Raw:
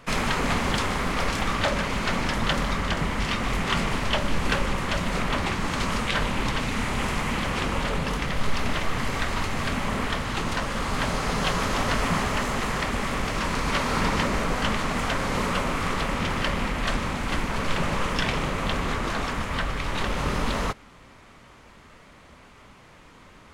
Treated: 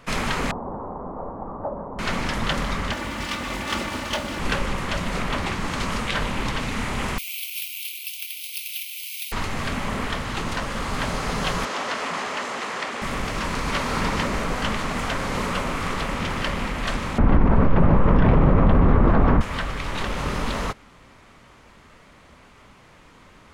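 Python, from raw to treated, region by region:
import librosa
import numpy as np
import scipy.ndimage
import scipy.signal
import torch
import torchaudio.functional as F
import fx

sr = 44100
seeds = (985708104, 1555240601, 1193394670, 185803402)

y = fx.chain(x, sr, fx.steep_lowpass(hz=970.0, slope=36),
    fx.low_shelf(hz=240.0, db=-12.0), at=(0.51, 1.99))
y = fx.chain(y, sr, fx.lower_of_two(delay_ms=3.4),
    fx.highpass(hz=63.0, slope=12),
    fx.mod_noise(seeds[0], snr_db=31), at=(2.92, 4.4))
y = fx.chain(y, sr, fx.steep_highpass(hz=2300.0, slope=96),
    fx.clip_hard(threshold_db=-26.5),
    fx.resample_bad(factor=3, down='filtered', up='zero_stuff'), at=(7.18, 9.32))
y = fx.chain(y, sr, fx.bandpass_edges(low_hz=350.0, high_hz=7900.0),
    fx.transformer_sat(knee_hz=1200.0), at=(11.65, 13.02))
y = fx.chain(y, sr, fx.lowpass(hz=1100.0, slope=12),
    fx.low_shelf(hz=320.0, db=8.5),
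    fx.env_flatten(amount_pct=70), at=(17.18, 19.41))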